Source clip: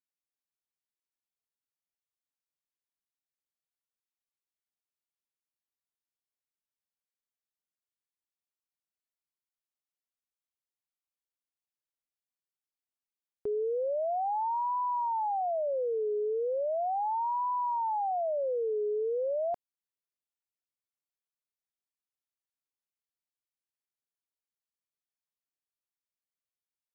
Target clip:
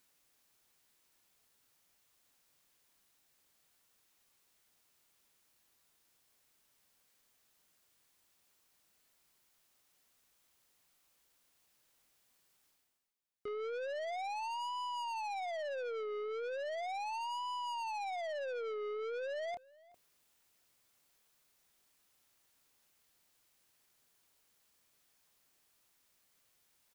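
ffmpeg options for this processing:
-filter_complex "[0:a]asplit=2[a][b];[b]adelay=27,volume=-12dB[c];[a][c]amix=inputs=2:normalize=0,aeval=exprs='(tanh(100*val(0)+0.05)-tanh(0.05))/100':c=same,asplit=2[d][e];[e]adelay=373.2,volume=-30dB,highshelf=f=4k:g=-8.4[f];[d][f]amix=inputs=2:normalize=0,areverse,acompressor=mode=upward:threshold=-58dB:ratio=2.5,areverse,volume=1.5dB"

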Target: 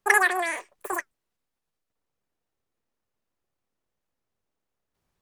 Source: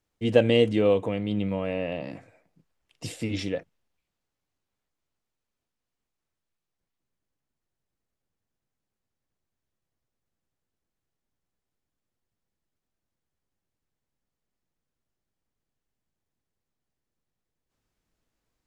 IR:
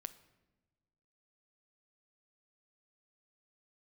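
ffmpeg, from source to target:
-af "flanger=delay=5.5:depth=9.9:regen=-73:speed=0.64:shape=sinusoidal,asetrate=157878,aresample=44100,volume=5.5dB"

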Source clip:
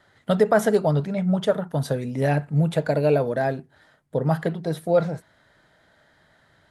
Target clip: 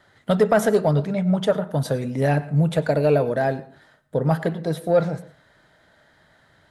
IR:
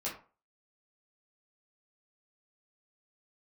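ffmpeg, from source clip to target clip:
-filter_complex "[0:a]acontrast=65,asplit=2[a][b];[1:a]atrim=start_sample=2205,adelay=94[c];[b][c]afir=irnorm=-1:irlink=0,volume=-19.5dB[d];[a][d]amix=inputs=2:normalize=0,volume=-4.5dB"

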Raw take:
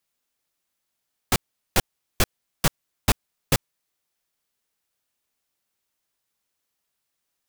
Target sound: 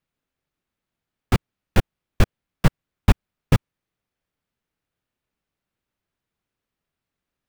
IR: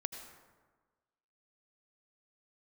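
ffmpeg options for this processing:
-filter_complex "[0:a]bass=f=250:g=7,treble=f=4k:g=-13,asplit=2[a][b];[b]acrusher=samples=40:mix=1:aa=0.000001,volume=-7dB[c];[a][c]amix=inputs=2:normalize=0,volume=-1dB"

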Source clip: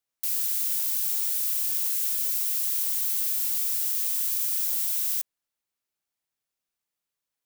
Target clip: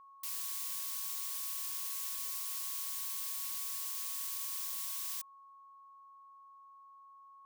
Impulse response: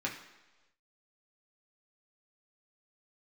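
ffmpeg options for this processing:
-af "highshelf=f=8.8k:g=-9,aeval=exprs='val(0)+0.00355*sin(2*PI*1100*n/s)':c=same,asoftclip=type=hard:threshold=-24dB,volume=-5.5dB"

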